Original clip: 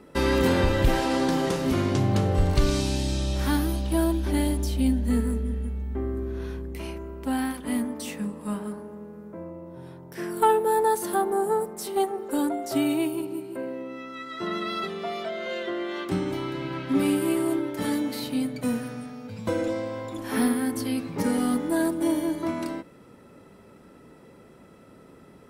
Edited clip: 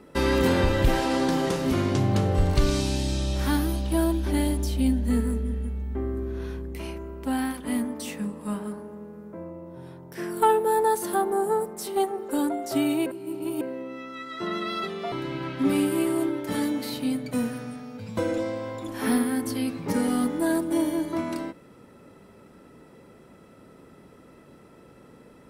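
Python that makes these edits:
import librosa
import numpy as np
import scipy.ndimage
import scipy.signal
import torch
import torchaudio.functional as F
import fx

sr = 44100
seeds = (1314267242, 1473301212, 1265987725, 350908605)

y = fx.edit(x, sr, fx.reverse_span(start_s=13.06, length_s=0.55),
    fx.cut(start_s=15.12, length_s=1.3), tone=tone)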